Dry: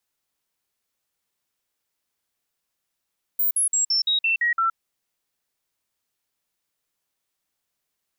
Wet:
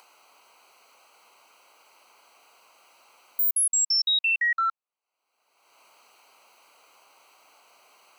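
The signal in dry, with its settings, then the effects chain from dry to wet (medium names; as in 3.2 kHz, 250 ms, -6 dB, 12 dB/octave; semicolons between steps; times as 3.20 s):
stepped sine 15.2 kHz down, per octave 2, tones 8, 0.12 s, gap 0.05 s -18 dBFS
local Wiener filter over 25 samples; high-pass 1.1 kHz 12 dB/octave; upward compressor, threshold -26 dBFS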